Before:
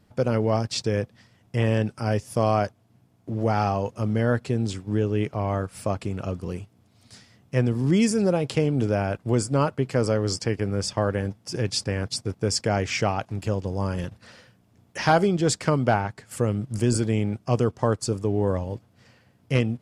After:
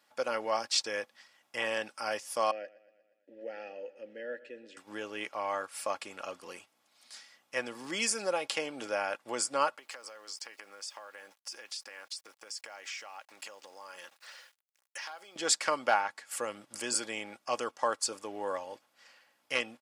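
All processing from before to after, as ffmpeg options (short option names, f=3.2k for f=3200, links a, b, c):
-filter_complex "[0:a]asettb=1/sr,asplit=3[a][b][c];[a]atrim=end=2.514[d];[b]atrim=start=2.51:end=4.77,asetpts=PTS-STARTPTS,afade=t=in:d=0.004:c=qsin,afade=t=out:st=2.256:d=0.004:c=qsin,asplit=3[e][f][g];[e]bandpass=f=530:t=q:w=8,volume=0dB[h];[f]bandpass=f=1.84k:t=q:w=8,volume=-6dB[i];[g]bandpass=f=2.48k:t=q:w=8,volume=-9dB[j];[h][i][j]amix=inputs=3:normalize=0,lowshelf=f=420:t=q:w=1.5:g=11.5,aecho=1:1:119|238|357|476|595:0.119|0.0701|0.0414|0.0244|0.0144,atrim=end_sample=99666[k];[c]atrim=start=4.766[l];[d][k]acrossfade=d=0.004:c1=hsin:c2=qsin[m];[m][l]acrossfade=d=0.004:c1=qsin:c2=hsin,asettb=1/sr,asplit=3[n][o][p];[n]atrim=end=9.774[q];[o]atrim=start=9.77:end=15.36,asetpts=PTS-STARTPTS,afade=t=in:d=0.004:c=qsin,afade=t=out:st=5.586:d=0.004:c=qsin,highpass=f=550:p=1,acompressor=threshold=-37dB:ratio=16:attack=3.2:release=140:knee=1:detection=peak,aeval=exprs='val(0)*gte(abs(val(0)),0.00112)':c=same[r];[p]atrim=start=15.356[s];[q][r]acrossfade=d=0.004:c1=hsin:c2=qsin[t];[t][s]acrossfade=d=0.004:c1=qsin:c2=hsin,highpass=890,aecho=1:1:3.6:0.38"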